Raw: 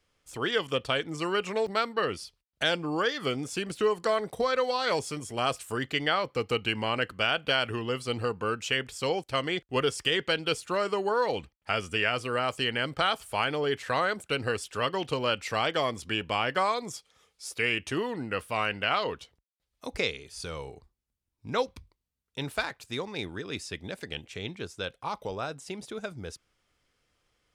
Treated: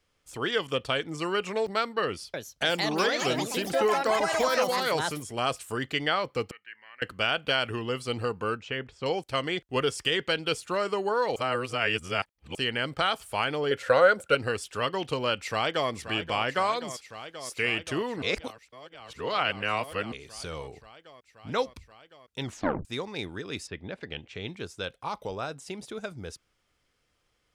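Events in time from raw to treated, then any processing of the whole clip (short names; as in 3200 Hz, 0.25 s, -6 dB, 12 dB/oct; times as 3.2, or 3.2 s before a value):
2.05–5.69 echoes that change speed 0.287 s, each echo +4 st, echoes 3
6.51–7.02 band-pass 1800 Hz, Q 13
8.57–9.06 tape spacing loss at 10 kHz 27 dB
11.36–12.55 reverse
13.71–14.35 small resonant body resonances 530/1400 Hz, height 16 dB
15.4–15.9 echo throw 0.53 s, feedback 85%, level -11 dB
18.22–20.12 reverse
22.41 tape stop 0.44 s
23.66–24.45 LPF 2200 Hz -> 4900 Hz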